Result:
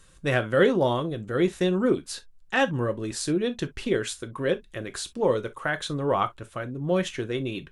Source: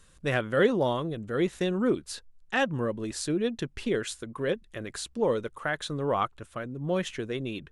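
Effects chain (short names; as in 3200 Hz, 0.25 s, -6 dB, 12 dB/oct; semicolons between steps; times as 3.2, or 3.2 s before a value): non-linear reverb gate 80 ms falling, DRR 9 dB; gain +2.5 dB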